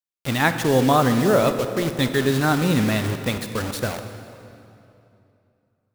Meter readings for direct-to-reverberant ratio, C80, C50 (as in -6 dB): 8.0 dB, 9.0 dB, 8.5 dB